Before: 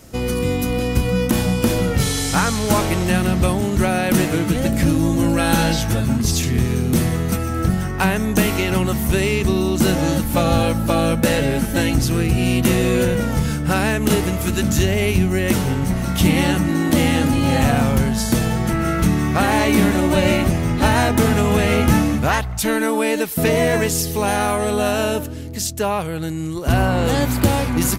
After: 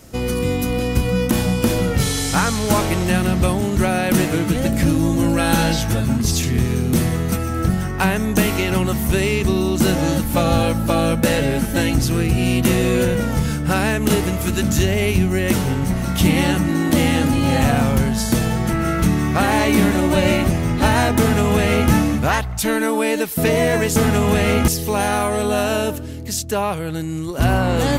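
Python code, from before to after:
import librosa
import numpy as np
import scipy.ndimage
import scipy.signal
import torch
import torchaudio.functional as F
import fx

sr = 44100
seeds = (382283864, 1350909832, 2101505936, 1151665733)

y = fx.edit(x, sr, fx.duplicate(start_s=21.19, length_s=0.72, to_s=23.96), tone=tone)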